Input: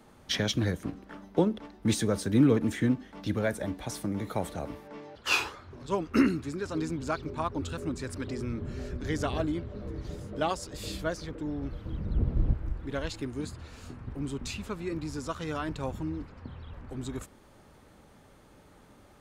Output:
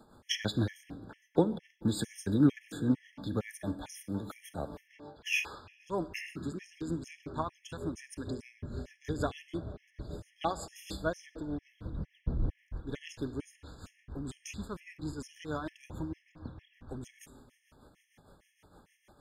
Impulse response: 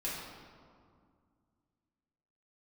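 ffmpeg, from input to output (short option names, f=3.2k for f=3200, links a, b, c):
-filter_complex "[0:a]tremolo=f=6.5:d=0.58,asplit=2[a][b];[1:a]atrim=start_sample=2205,highshelf=f=4.9k:g=4,adelay=47[c];[b][c]afir=irnorm=-1:irlink=0,volume=-19dB[d];[a][d]amix=inputs=2:normalize=0,afftfilt=real='re*gt(sin(2*PI*2.2*pts/sr)*(1-2*mod(floor(b*sr/1024/1700),2)),0)':imag='im*gt(sin(2*PI*2.2*pts/sr)*(1-2*mod(floor(b*sr/1024/1700),2)),0)':win_size=1024:overlap=0.75"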